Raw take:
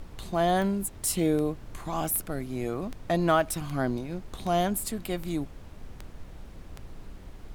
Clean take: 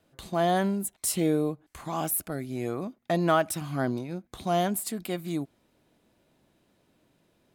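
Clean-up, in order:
click removal
noise reduction from a noise print 23 dB

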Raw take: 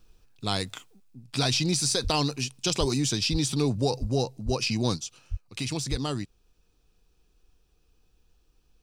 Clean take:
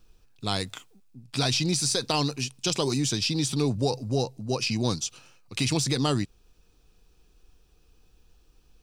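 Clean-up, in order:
high-pass at the plosives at 0:02.03/0:02.79/0:03.31/0:04.00/0:04.45/0:05.30/0:05.90
level correction +5.5 dB, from 0:04.97

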